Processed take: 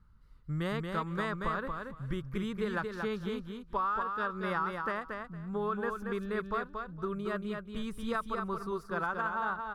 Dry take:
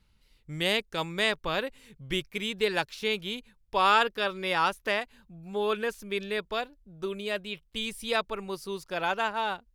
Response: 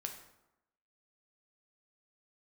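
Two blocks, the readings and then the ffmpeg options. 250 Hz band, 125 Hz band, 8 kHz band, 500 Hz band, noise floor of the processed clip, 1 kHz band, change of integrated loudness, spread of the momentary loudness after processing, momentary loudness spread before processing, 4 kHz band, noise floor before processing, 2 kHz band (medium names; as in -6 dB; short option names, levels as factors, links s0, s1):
+1.0 dB, +3.5 dB, under -10 dB, -5.5 dB, -55 dBFS, -4.5 dB, -5.5 dB, 6 LU, 10 LU, -17.5 dB, -67 dBFS, -7.0 dB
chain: -filter_complex "[0:a]firequalizer=gain_entry='entry(140,0);entry(300,-7);entry(740,-12);entry(1200,4);entry(2400,-22);entry(4700,-19)':delay=0.05:min_phase=1,acompressor=threshold=0.0178:ratio=16,asplit=2[s0][s1];[s1]aecho=0:1:230|460|690:0.562|0.101|0.0182[s2];[s0][s2]amix=inputs=2:normalize=0,volume=1.88"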